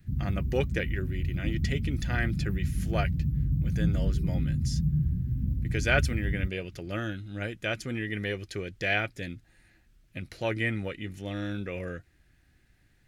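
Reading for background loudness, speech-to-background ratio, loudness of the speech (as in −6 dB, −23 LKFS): −30.5 LKFS, −2.5 dB, −33.0 LKFS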